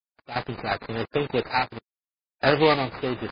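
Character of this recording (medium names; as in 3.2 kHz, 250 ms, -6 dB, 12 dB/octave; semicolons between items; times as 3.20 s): a quantiser's noise floor 6-bit, dither none; random-step tremolo 2.8 Hz, depth 100%; aliases and images of a low sample rate 3.2 kHz, jitter 20%; MP3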